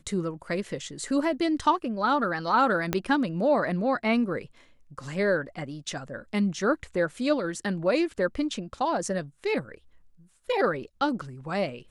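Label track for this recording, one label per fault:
2.930000	2.930000	pop -10 dBFS

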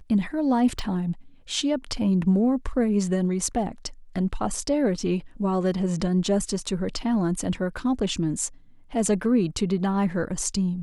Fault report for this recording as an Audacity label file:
0.790000	0.790000	pop

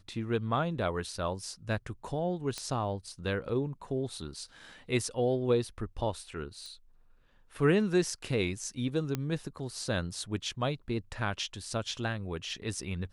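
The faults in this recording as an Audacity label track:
2.580000	2.580000	pop -21 dBFS
6.660000	6.660000	pop -32 dBFS
9.150000	9.150000	pop -18 dBFS

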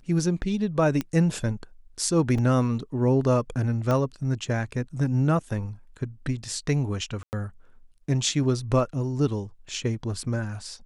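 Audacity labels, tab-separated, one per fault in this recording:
1.010000	1.010000	pop -14 dBFS
2.380000	2.380000	gap 4.3 ms
3.910000	3.910000	pop -14 dBFS
7.230000	7.330000	gap 99 ms

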